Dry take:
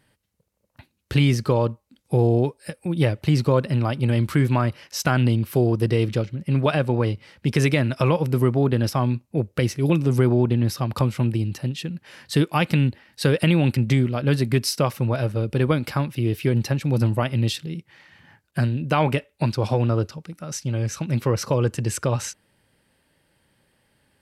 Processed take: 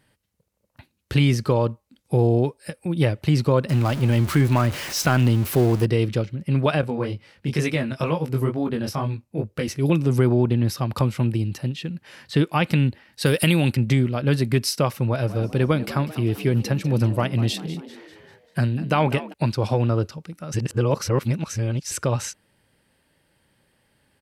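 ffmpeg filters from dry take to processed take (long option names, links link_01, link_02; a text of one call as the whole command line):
ffmpeg -i in.wav -filter_complex "[0:a]asettb=1/sr,asplit=3[link_01][link_02][link_03];[link_01]atrim=end=3.694[link_04];[link_02]atrim=start=3.69:end=5.85,asetpts=PTS-STARTPTS,afade=type=in:duration=0.004:curve=qsin,afade=type=out:start_time=2.156:duration=0.004:curve=qsin,aeval=exprs='val(0)+0.5*0.0447*sgn(val(0))':channel_layout=same[link_05];[link_03]atrim=start=5.846[link_06];[link_04][link_05]acrossfade=duration=0.004:curve1=hsin:curve2=qsin[link_07];[link_07][link_06]acrossfade=duration=0.004:curve1=qsin:curve2=hsin,asettb=1/sr,asplit=3[link_08][link_09][link_10];[link_08]atrim=end=6.814[link_11];[link_09]atrim=start=6.81:end=9.68,asetpts=PTS-STARTPTS,afade=type=in:duration=0.004:curve=qsin,afade=type=out:start_time=2.866:duration=0.004:curve=qsin,flanger=delay=18:depth=4.6:speed=2.2[link_12];[link_10]atrim=start=9.676[link_13];[link_11][link_12]acrossfade=duration=0.004:curve1=hsin:curve2=qsin[link_14];[link_14][link_13]acrossfade=duration=0.004:curve1=qsin:curve2=hsin,asettb=1/sr,asplit=3[link_15][link_16][link_17];[link_15]atrim=end=11.684[link_18];[link_16]atrim=start=11.68:end=12.64,asetpts=PTS-STARTPTS,afade=type=in:duration=0.004:curve=qsin,afade=type=out:start_time=0.956:duration=0.004:curve=qsin,acrossover=split=4500[link_19][link_20];[link_20]acompressor=threshold=-46dB:ratio=4:attack=1:release=60[link_21];[link_19][link_21]amix=inputs=2:normalize=0[link_22];[link_17]atrim=start=12.636[link_23];[link_18][link_22]acrossfade=duration=0.004:curve1=hsin:curve2=qsin[link_24];[link_24][link_23]acrossfade=duration=0.004:curve1=qsin:curve2=hsin,asettb=1/sr,asplit=3[link_25][link_26][link_27];[link_25]atrim=end=13.264[link_28];[link_26]atrim=start=13.26:end=13.7,asetpts=PTS-STARTPTS,afade=type=in:duration=0.004:curve=qsin,afade=type=out:start_time=0.436:duration=0.004:curve=qsin,aemphasis=mode=production:type=75fm[link_29];[link_27]atrim=start=13.696[link_30];[link_28][link_29]acrossfade=duration=0.004:curve1=hsin:curve2=qsin[link_31];[link_31][link_30]acrossfade=duration=0.004:curve1=qsin:curve2=hsin,asplit=3[link_32][link_33][link_34];[link_32]afade=type=out:start_time=15.27:duration=0.02[link_35];[link_33]asplit=6[link_36][link_37][link_38][link_39][link_40][link_41];[link_37]adelay=196,afreqshift=76,volume=-15.5dB[link_42];[link_38]adelay=392,afreqshift=152,volume=-21.5dB[link_43];[link_39]adelay=588,afreqshift=228,volume=-27.5dB[link_44];[link_40]adelay=784,afreqshift=304,volume=-33.6dB[link_45];[link_41]adelay=980,afreqshift=380,volume=-39.6dB[link_46];[link_36][link_42][link_43][link_44][link_45][link_46]amix=inputs=6:normalize=0,afade=type=in:start_time=15.27:duration=0.02,afade=type=out:start_time=19.32:duration=0.02[link_47];[link_34]afade=type=in:start_time=19.32:duration=0.02[link_48];[link_35][link_47][link_48]amix=inputs=3:normalize=0,asplit=3[link_49][link_50][link_51];[link_49]atrim=end=20.542[link_52];[link_50]atrim=start=20.538:end=21.912,asetpts=PTS-STARTPTS,areverse[link_53];[link_51]atrim=start=21.908[link_54];[link_52][link_53]acrossfade=duration=0.004:curve1=hsin:curve2=hsin[link_55];[link_55][link_54]acrossfade=duration=0.004:curve1=hsin:curve2=hsin" out.wav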